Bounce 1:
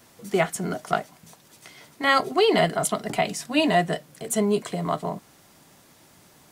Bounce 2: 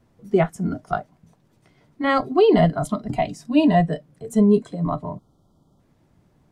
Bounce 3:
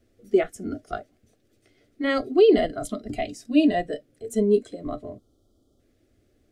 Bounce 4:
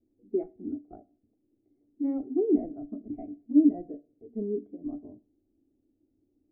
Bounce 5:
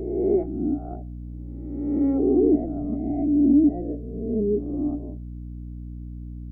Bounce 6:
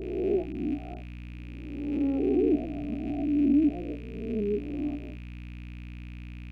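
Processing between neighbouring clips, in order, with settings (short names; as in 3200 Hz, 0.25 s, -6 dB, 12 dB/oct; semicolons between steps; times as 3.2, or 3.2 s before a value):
spectral noise reduction 11 dB; spectral gain 5.17–5.8, 1400–3000 Hz -29 dB; tilt -4 dB/oct
fixed phaser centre 390 Hz, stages 4
vocal tract filter u; reverb RT60 0.40 s, pre-delay 6 ms, DRR 15.5 dB
spectral swells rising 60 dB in 1.26 s; compressor 2.5:1, threshold -24 dBFS, peak gain reduction 7 dB; hum 60 Hz, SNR 11 dB; gain +7 dB
rattling part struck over -31 dBFS, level -33 dBFS; gain -5.5 dB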